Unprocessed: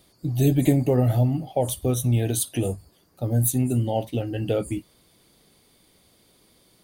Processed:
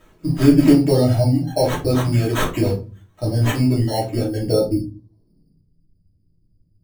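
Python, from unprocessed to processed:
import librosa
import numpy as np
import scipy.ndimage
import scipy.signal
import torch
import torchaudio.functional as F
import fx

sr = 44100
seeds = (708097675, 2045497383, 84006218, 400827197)

y = fx.dereverb_blind(x, sr, rt60_s=0.75)
y = fx.filter_sweep_lowpass(y, sr, from_hz=8600.0, to_hz=110.0, start_s=3.36, end_s=5.72, q=1.2)
y = fx.sample_hold(y, sr, seeds[0], rate_hz=4900.0, jitter_pct=0)
y = fx.room_shoebox(y, sr, seeds[1], volume_m3=140.0, walls='furnished', distance_m=2.8)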